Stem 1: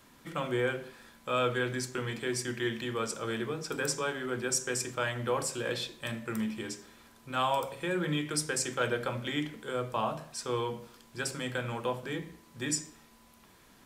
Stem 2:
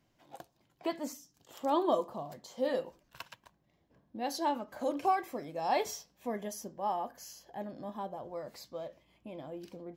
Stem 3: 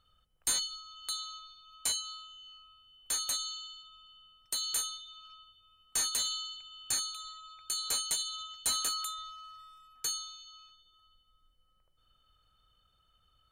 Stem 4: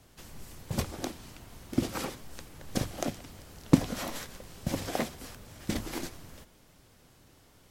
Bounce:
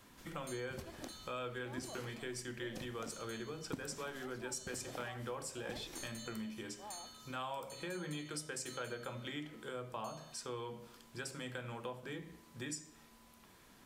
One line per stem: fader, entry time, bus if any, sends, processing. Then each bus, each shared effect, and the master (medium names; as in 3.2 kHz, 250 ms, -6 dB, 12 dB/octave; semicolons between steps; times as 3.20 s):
-3.0 dB, 0.00 s, no send, none
-16.5 dB, 0.00 s, no send, none
-15.0 dB, 0.00 s, no send, none
-10.5 dB, 0.00 s, no send, none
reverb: none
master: compression 2.5:1, threshold -44 dBFS, peak gain reduction 14 dB